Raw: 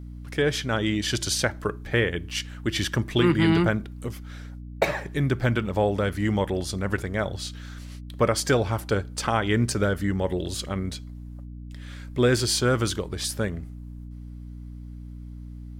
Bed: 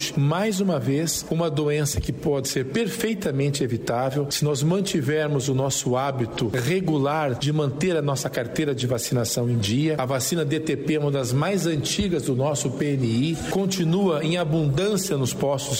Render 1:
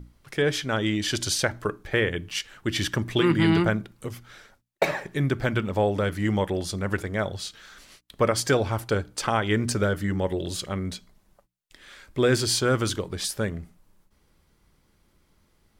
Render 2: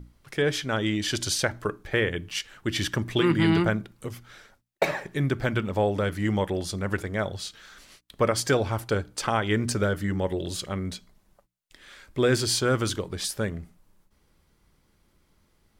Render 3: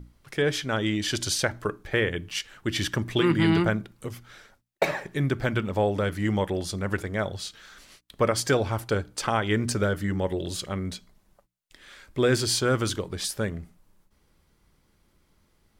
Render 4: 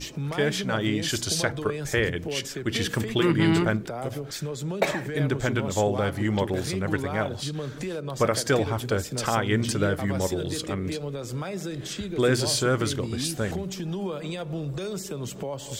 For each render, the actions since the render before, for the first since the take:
mains-hum notches 60/120/180/240/300 Hz
level −1 dB
no processing that can be heard
mix in bed −10 dB

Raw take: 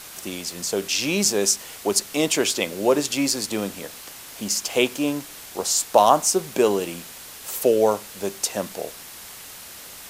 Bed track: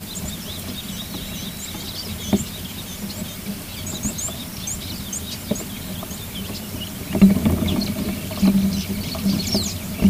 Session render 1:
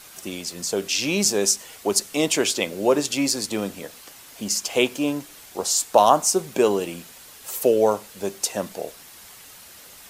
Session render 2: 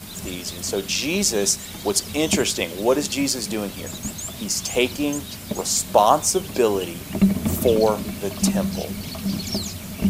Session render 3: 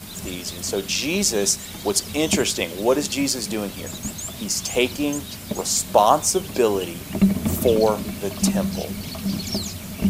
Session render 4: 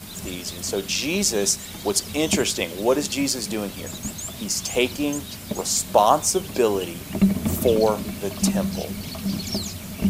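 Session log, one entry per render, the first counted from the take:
broadband denoise 6 dB, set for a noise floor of −41 dBFS
mix in bed track −5 dB
no processing that can be heard
level −1 dB

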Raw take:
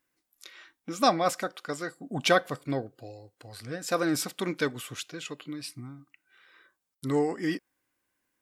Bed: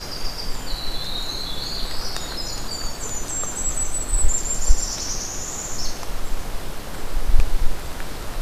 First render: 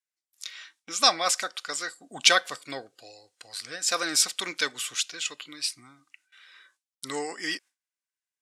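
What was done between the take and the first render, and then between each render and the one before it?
noise gate with hold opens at −56 dBFS
meter weighting curve ITU-R 468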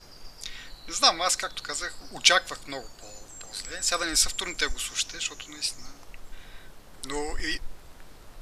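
mix in bed −18.5 dB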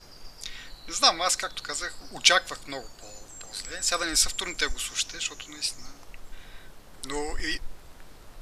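no processing that can be heard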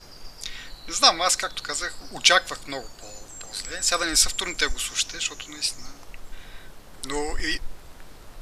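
level +3.5 dB
brickwall limiter −1 dBFS, peak gain reduction 3 dB

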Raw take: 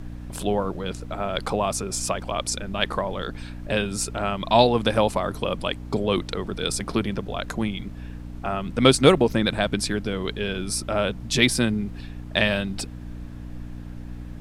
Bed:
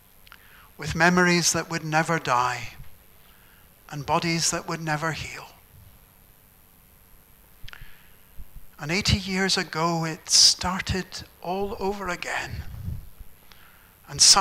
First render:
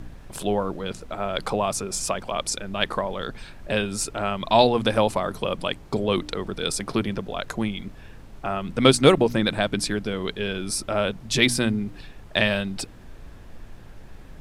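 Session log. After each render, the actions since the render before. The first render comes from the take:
hum removal 60 Hz, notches 5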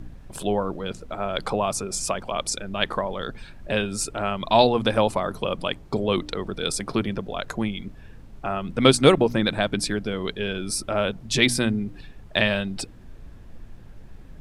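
broadband denoise 6 dB, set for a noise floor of −44 dBFS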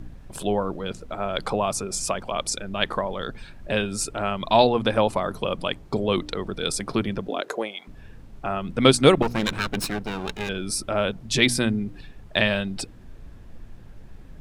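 0:04.56–0:05.13: bass and treble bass −1 dB, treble −4 dB
0:07.27–0:07.87: high-pass with resonance 250 Hz → 860 Hz, resonance Q 3.7
0:09.22–0:10.49: lower of the sound and its delayed copy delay 0.75 ms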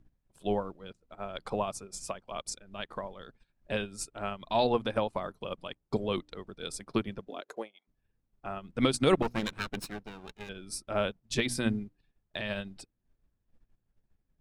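brickwall limiter −12.5 dBFS, peak gain reduction 10 dB
expander for the loud parts 2.5 to 1, over −43 dBFS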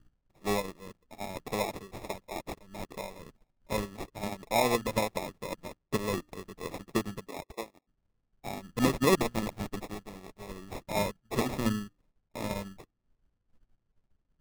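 decimation without filtering 29×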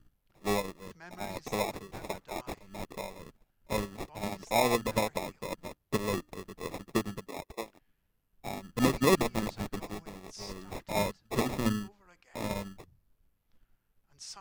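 mix in bed −31 dB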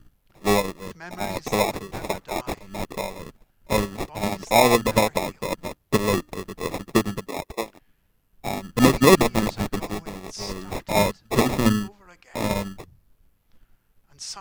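level +10 dB

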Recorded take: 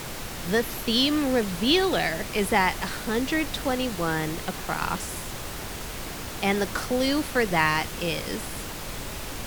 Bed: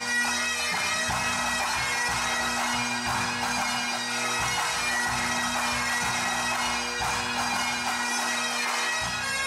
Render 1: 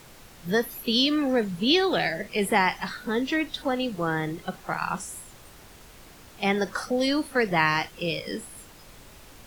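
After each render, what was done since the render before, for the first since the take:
noise reduction from a noise print 14 dB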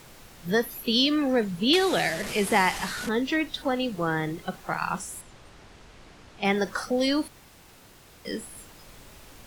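0:01.73–0:03.09: linear delta modulator 64 kbit/s, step −27.5 dBFS
0:05.21–0:06.45: high-frequency loss of the air 78 metres
0:07.28–0:08.25: fill with room tone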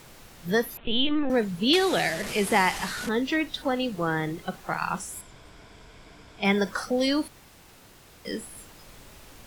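0:00.77–0:01.30: linear-prediction vocoder at 8 kHz pitch kept
0:05.13–0:06.72: EQ curve with evenly spaced ripples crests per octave 1.7, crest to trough 7 dB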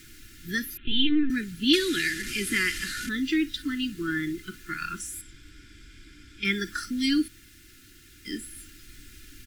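elliptic band-stop filter 330–1,500 Hz, stop band 50 dB
comb filter 2.9 ms, depth 53%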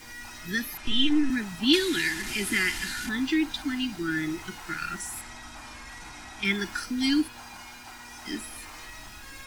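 mix in bed −17.5 dB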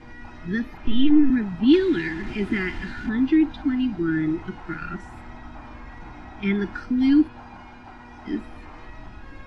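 low-pass filter 3,300 Hz 12 dB per octave
tilt shelving filter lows +8.5 dB, about 1,300 Hz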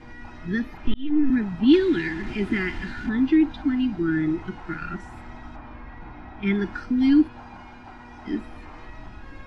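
0:00.94–0:01.36: fade in
0:05.56–0:06.47: high-frequency loss of the air 180 metres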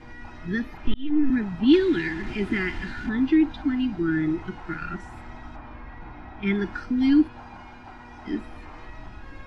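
parametric band 230 Hz −2 dB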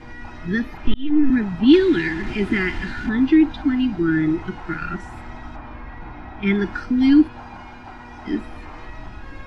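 level +5 dB
brickwall limiter −3 dBFS, peak gain reduction 0.5 dB

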